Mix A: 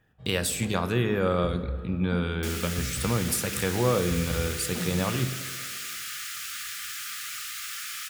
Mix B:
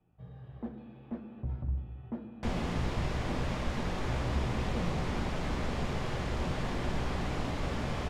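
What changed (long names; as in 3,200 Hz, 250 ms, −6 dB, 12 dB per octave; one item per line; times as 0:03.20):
speech: muted
second sound: remove Chebyshev high-pass filter 1,200 Hz, order 10
master: add head-to-tape spacing loss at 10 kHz 24 dB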